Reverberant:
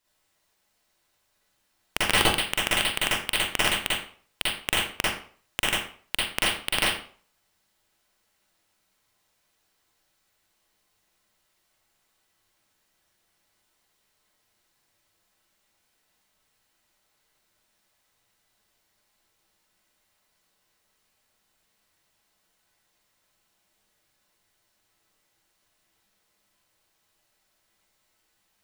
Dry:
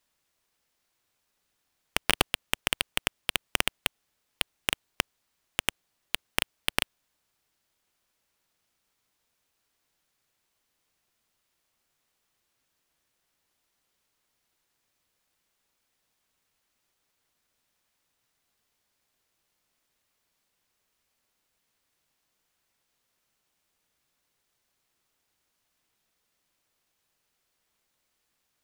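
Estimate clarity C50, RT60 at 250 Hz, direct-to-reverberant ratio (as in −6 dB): −2.5 dB, 0.40 s, −7.5 dB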